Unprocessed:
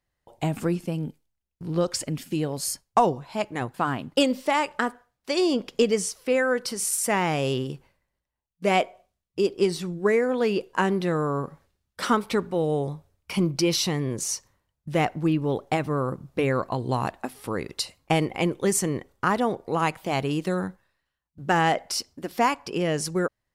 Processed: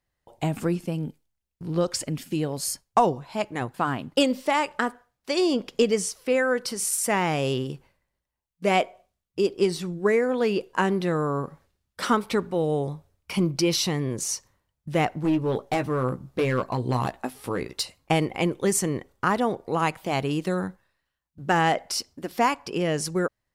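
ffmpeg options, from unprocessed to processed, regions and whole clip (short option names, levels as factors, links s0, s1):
-filter_complex "[0:a]asettb=1/sr,asplit=3[s0][s1][s2];[s0]atrim=end=15.214[s3];[s1]atrim=start=15.21:end=17.83,asetpts=PTS-STARTPTS,afade=t=in:d=0.004:c=qsin,afade=t=out:st=2.616:d=0.004:c=qsin,asoftclip=type=hard:threshold=0.112,asplit=2[s4][s5];[s5]adelay=16,volume=0.398[s6];[s4][s6]amix=inputs=2:normalize=0,atrim=end_sample=115542[s7];[s2]atrim=start=17.826[s8];[s3][s7]acrossfade=d=0.004:c1=hsin:c2=qsin[s9];[s9][s8]acrossfade=d=0.004:c1=qsin:c2=hsin"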